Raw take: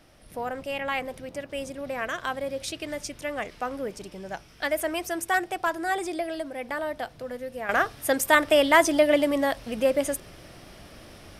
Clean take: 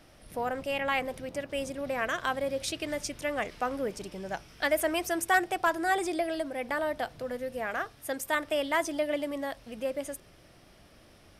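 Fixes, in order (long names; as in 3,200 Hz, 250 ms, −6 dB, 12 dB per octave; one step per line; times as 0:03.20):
level 0 dB, from 0:07.69 −10 dB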